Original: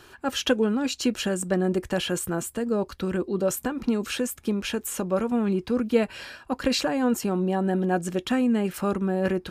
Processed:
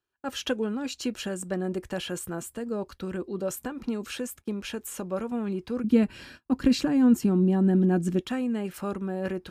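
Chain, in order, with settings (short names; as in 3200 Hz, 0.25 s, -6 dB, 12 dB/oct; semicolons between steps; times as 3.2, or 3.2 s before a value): 5.84–8.21 resonant low shelf 400 Hz +9 dB, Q 1.5; gate -41 dBFS, range -31 dB; gain -6 dB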